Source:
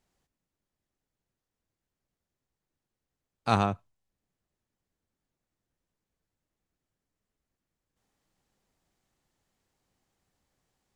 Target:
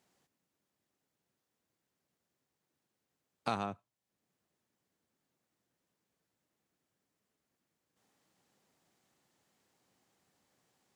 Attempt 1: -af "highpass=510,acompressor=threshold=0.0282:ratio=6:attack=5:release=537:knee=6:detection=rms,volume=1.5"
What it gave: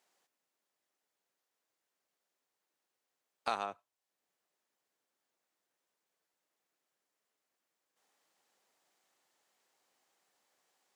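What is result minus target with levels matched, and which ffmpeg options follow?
125 Hz band -16.5 dB
-af "highpass=150,acompressor=threshold=0.0282:ratio=6:attack=5:release=537:knee=6:detection=rms,volume=1.5"

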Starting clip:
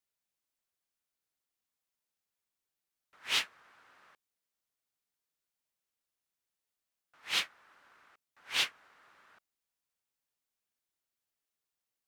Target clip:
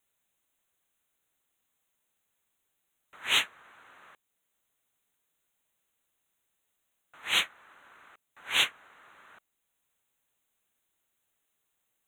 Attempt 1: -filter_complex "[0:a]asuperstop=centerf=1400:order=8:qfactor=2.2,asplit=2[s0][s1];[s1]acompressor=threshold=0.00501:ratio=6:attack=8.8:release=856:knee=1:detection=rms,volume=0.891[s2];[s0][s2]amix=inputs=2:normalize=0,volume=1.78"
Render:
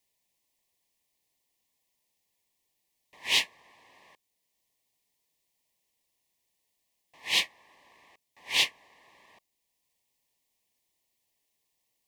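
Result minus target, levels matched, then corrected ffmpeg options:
1 kHz band -4.0 dB
-filter_complex "[0:a]asuperstop=centerf=5000:order=8:qfactor=2.2,asplit=2[s0][s1];[s1]acompressor=threshold=0.00501:ratio=6:attack=8.8:release=856:knee=1:detection=rms,volume=0.891[s2];[s0][s2]amix=inputs=2:normalize=0,volume=1.78"

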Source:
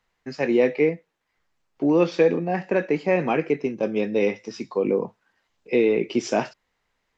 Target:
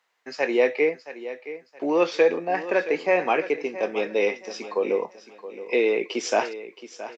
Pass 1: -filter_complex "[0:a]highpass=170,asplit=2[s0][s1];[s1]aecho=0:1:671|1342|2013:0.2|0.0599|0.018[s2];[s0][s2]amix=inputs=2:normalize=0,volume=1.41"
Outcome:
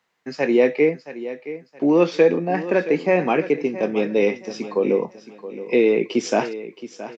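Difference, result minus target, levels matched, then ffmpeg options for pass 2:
125 Hz band +12.0 dB
-filter_complex "[0:a]highpass=510,asplit=2[s0][s1];[s1]aecho=0:1:671|1342|2013:0.2|0.0599|0.018[s2];[s0][s2]amix=inputs=2:normalize=0,volume=1.41"

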